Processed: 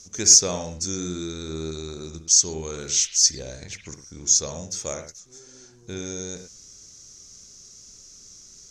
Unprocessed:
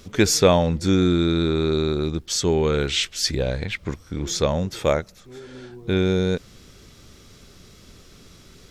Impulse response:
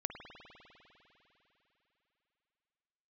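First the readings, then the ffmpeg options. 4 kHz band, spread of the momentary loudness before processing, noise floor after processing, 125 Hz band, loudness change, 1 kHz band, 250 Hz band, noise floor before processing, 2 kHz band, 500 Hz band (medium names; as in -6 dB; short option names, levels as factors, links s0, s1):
+0.5 dB, 13 LU, -49 dBFS, -13.0 dB, +1.0 dB, -12.0 dB, -12.5 dB, -50 dBFS, -11.5 dB, -12.5 dB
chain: -filter_complex "[0:a]aexciter=amount=3.8:drive=7.2:freq=4800,lowpass=f=6300:t=q:w=6.2[s0];[1:a]atrim=start_sample=2205,atrim=end_sample=6174[s1];[s0][s1]afir=irnorm=-1:irlink=0,volume=0.266"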